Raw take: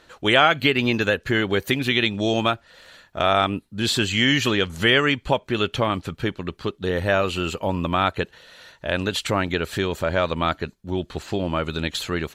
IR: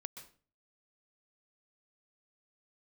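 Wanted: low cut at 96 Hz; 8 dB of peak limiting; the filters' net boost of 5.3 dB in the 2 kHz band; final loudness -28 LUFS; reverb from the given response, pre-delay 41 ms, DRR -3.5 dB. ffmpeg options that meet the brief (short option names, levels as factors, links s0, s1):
-filter_complex "[0:a]highpass=96,equalizer=f=2000:t=o:g=6.5,alimiter=limit=0.447:level=0:latency=1,asplit=2[s0][s1];[1:a]atrim=start_sample=2205,adelay=41[s2];[s1][s2]afir=irnorm=-1:irlink=0,volume=2.24[s3];[s0][s3]amix=inputs=2:normalize=0,volume=0.282"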